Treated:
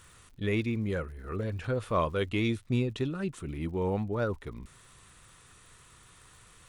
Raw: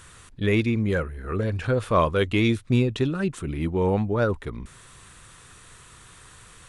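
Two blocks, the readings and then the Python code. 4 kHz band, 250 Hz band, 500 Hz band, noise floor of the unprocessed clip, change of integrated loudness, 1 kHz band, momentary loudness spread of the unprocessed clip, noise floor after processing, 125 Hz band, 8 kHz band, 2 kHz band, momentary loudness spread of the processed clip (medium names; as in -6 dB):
-7.5 dB, -7.5 dB, -7.5 dB, -50 dBFS, -7.5 dB, -7.5 dB, 8 LU, -57 dBFS, -7.5 dB, -7.5 dB, -8.0 dB, 8 LU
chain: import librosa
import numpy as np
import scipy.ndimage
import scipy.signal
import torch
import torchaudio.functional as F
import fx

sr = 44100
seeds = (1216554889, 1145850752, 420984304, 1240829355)

y = fx.notch(x, sr, hz=1600.0, q=23.0)
y = fx.dmg_crackle(y, sr, seeds[0], per_s=79.0, level_db=-42.0)
y = F.gain(torch.from_numpy(y), -7.5).numpy()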